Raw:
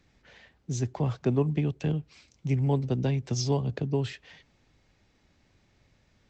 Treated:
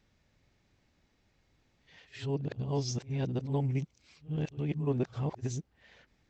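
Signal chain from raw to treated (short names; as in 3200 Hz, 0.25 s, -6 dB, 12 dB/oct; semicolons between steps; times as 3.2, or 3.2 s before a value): whole clip reversed; pre-echo 70 ms -16.5 dB; gain -5.5 dB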